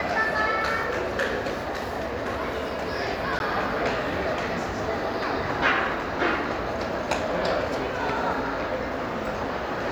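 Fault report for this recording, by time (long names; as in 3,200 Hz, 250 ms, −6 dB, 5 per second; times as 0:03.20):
0:03.39–0:03.40: drop-out 11 ms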